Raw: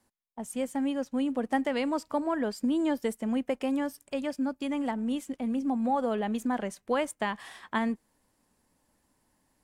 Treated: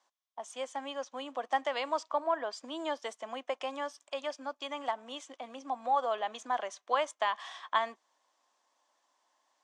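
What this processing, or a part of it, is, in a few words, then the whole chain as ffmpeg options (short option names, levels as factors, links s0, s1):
phone speaker on a table: -filter_complex "[0:a]highpass=f=430:w=0.5412,highpass=f=430:w=1.3066,equalizer=f=440:t=q:w=4:g=-8,equalizer=f=690:t=q:w=4:g=5,equalizer=f=1100:t=q:w=4:g=9,equalizer=f=3400:t=q:w=4:g=8,equalizer=f=6100:t=q:w=4:g=7,lowpass=f=7200:w=0.5412,lowpass=f=7200:w=1.3066,asettb=1/sr,asplit=3[s0][s1][s2];[s0]atrim=end=2.094[s3];[s1]atrim=start=2.09:end=2.53,asetpts=PTS-STARTPTS,afade=t=in:d=0.004:c=qsin,afade=t=out:st=0.436:d=0.004:c=qsin,highshelf=f=4000:g=-9[s4];[s2]atrim=start=2.526[s5];[s3][s4]acrossfade=d=0.004:c1=hsin:c2=qsin[s6];[s6][s5]acrossfade=d=0.004:c1=qsin:c2=hsin,volume=0.75"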